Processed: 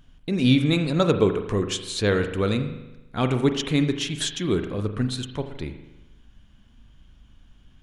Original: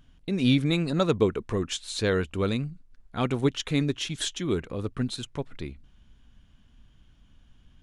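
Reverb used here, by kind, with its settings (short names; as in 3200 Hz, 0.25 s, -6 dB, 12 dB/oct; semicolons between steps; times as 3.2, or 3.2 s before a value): spring tank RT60 1 s, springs 39 ms, chirp 55 ms, DRR 7.5 dB; gain +3 dB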